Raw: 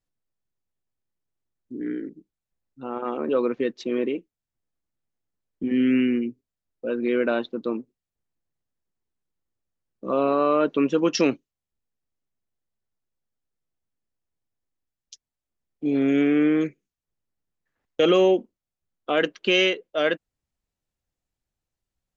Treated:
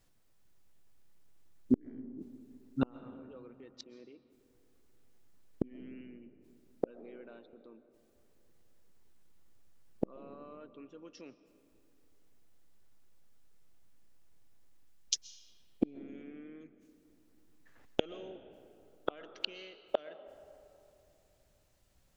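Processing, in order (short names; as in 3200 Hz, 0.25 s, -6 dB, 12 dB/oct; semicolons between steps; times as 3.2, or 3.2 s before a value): in parallel at -2 dB: limiter -19 dBFS, peak gain reduction 10.5 dB; on the sum: flipped gate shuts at -23 dBFS, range -42 dB; digital reverb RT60 3 s, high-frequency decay 0.45×, pre-delay 90 ms, DRR 14.5 dB; gain +9 dB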